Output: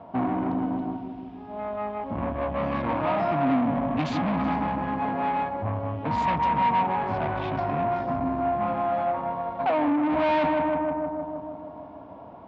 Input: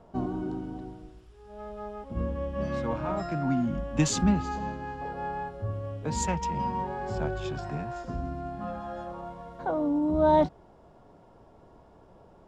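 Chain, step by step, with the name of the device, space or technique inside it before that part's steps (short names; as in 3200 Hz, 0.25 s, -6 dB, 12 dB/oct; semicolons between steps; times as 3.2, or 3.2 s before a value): analogue delay pedal into a guitar amplifier (analogue delay 0.156 s, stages 1024, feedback 70%, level -9 dB; tube stage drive 34 dB, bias 0.5; speaker cabinet 100–3700 Hz, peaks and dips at 100 Hz +4 dB, 270 Hz +8 dB, 400 Hz -7 dB, 690 Hz +8 dB, 1000 Hz +9 dB, 2300 Hz +5 dB); gain +8 dB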